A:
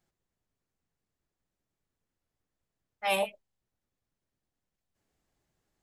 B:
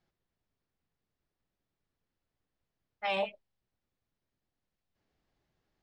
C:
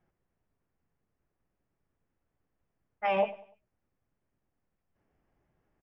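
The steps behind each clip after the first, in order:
LPF 5200 Hz 24 dB/oct; limiter -22.5 dBFS, peak gain reduction 5.5 dB
running mean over 11 samples; feedback echo 98 ms, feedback 38%, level -18.5 dB; gain +5.5 dB

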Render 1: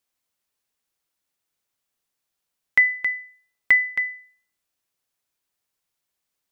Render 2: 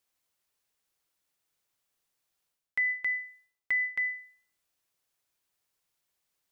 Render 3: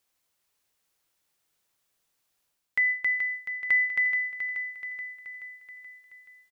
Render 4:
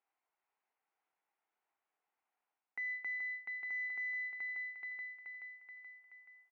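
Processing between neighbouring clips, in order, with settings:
bell 240 Hz -5.5 dB 0.25 oct; reverse; compressor 4:1, threshold -29 dBFS, peak gain reduction 14.5 dB; reverse
feedback echo 0.428 s, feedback 58%, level -8 dB; gain +4 dB
tube stage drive 33 dB, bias 0.55; speaker cabinet 490–2000 Hz, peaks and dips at 550 Hz -9 dB, 790 Hz +5 dB, 1200 Hz -4 dB, 1700 Hz -6 dB; gain +1 dB

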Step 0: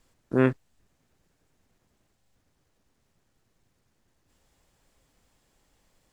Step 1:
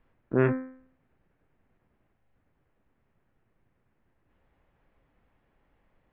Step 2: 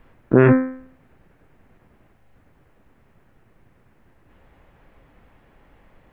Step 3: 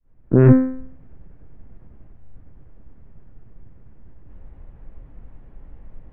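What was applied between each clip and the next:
LPF 2400 Hz 24 dB/oct; de-hum 86.48 Hz, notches 28
maximiser +16.5 dB; gain -1 dB
opening faded in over 0.64 s; tilt -4 dB/oct; gain -3.5 dB

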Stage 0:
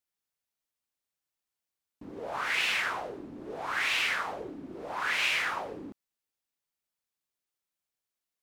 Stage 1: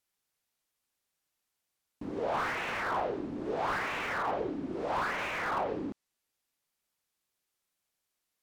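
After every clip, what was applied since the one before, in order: treble ducked by the level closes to 1200 Hz, closed at -27 dBFS; slew limiter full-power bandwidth 20 Hz; gain +6 dB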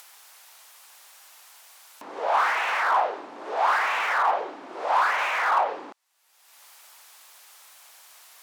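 upward compressor, threshold -38 dBFS; resonant high-pass 840 Hz, resonance Q 1.6; gain +7.5 dB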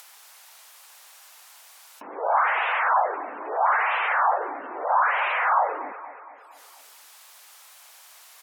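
feedback echo 0.233 s, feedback 55%, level -14.5 dB; spectral gate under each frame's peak -20 dB strong; gain +1 dB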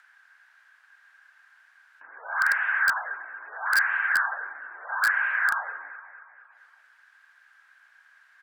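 band-pass 1600 Hz, Q 15; in parallel at -5 dB: wrapped overs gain 24 dB; on the sum: gain +6.5 dB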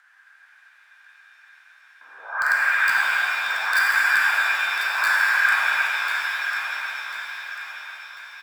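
on a send: feedback echo 1.044 s, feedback 38%, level -8 dB; on the sum: shimmer reverb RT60 3.7 s, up +7 st, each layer -8 dB, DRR -4.5 dB; gain -1 dB

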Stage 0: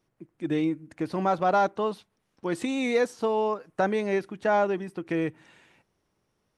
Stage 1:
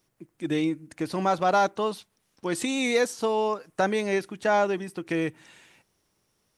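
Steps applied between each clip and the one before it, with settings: high shelf 3400 Hz +12 dB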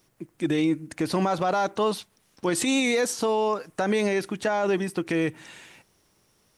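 limiter -22.5 dBFS, peak gain reduction 11.5 dB; gain +7 dB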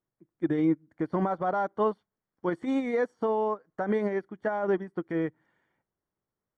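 polynomial smoothing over 41 samples; upward expander 2.5:1, over -35 dBFS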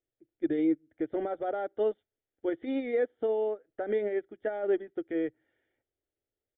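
fixed phaser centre 430 Hz, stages 4; downsampling 8000 Hz

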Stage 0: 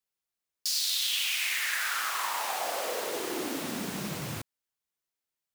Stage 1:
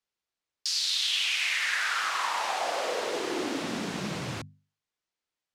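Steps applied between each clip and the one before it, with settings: LPF 5900 Hz 12 dB/oct; notches 50/100/150/200/250 Hz; gain +3 dB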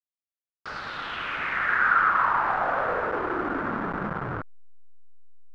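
level-crossing sampler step -28 dBFS; synth low-pass 1400 Hz, resonance Q 4.1; gain +1 dB

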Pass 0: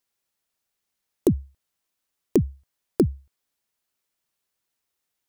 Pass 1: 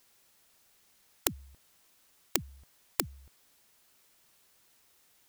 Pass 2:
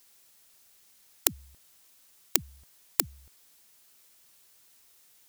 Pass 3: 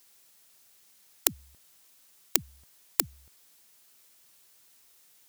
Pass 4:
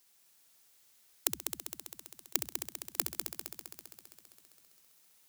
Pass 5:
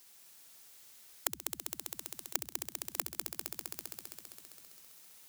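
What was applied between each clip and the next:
spectral compressor 4:1
high shelf 3300 Hz +7.5 dB; gain -1 dB
HPF 73 Hz
multi-head echo 66 ms, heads first and third, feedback 73%, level -7.5 dB; gain -7 dB
compressor 3:1, threshold -43 dBFS, peak gain reduction 14.5 dB; gain +8 dB

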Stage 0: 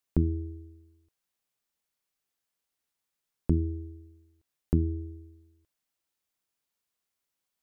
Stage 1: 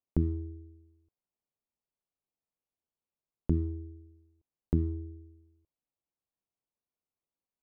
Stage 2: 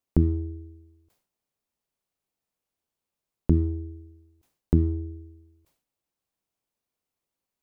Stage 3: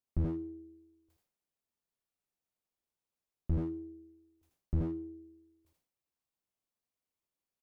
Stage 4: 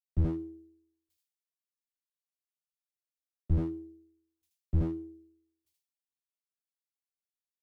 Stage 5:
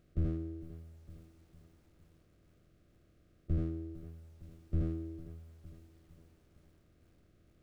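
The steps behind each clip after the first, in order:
Wiener smoothing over 25 samples; gain -2.5 dB
sustainer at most 110 dB/s; gain +7 dB
on a send: echo 80 ms -3.5 dB; on the sum: slew limiter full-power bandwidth 17 Hz; gain -8.5 dB
three-band expander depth 70%
per-bin compression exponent 0.4; Butterworth band-stop 900 Hz, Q 2.3; lo-fi delay 0.455 s, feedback 55%, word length 9-bit, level -15 dB; gain -6.5 dB

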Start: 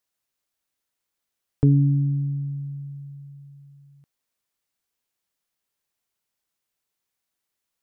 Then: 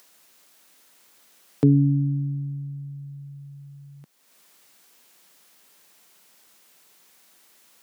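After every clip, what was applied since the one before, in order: HPF 160 Hz 24 dB/oct; in parallel at +3 dB: upward compressor, threshold -36 dBFS; on the sum: gain -3.5 dB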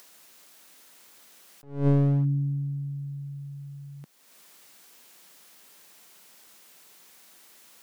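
one-sided fold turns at -24 dBFS; attack slew limiter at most 140 dB/s; gain +3 dB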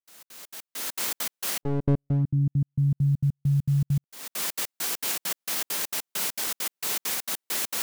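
recorder AGC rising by 27 dB/s; step gate ".xx.xx.x." 200 bpm -60 dB

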